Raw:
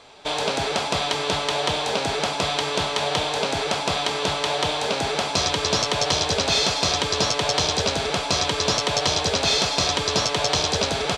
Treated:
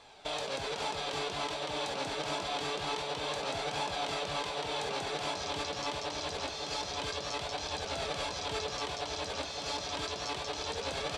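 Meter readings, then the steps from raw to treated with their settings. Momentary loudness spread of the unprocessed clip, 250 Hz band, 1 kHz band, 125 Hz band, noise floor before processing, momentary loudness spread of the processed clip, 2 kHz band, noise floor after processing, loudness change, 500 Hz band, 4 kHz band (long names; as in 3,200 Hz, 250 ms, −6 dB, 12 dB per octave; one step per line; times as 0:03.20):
4 LU, −13.5 dB, −11.5 dB, −15.5 dB, −27 dBFS, 2 LU, −12.5 dB, −40 dBFS, −13.5 dB, −12.0 dB, −14.5 dB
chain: compressor whose output falls as the input rises −27 dBFS, ratio −1
flanger 0.26 Hz, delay 1.1 ms, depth 2.5 ms, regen +62%
feedback echo with a low-pass in the loop 559 ms, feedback 71%, low-pass 3,300 Hz, level −7 dB
level −6.5 dB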